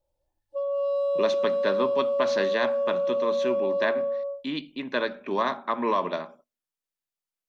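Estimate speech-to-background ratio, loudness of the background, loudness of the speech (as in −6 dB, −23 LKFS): −3.0 dB, −26.5 LKFS, −29.5 LKFS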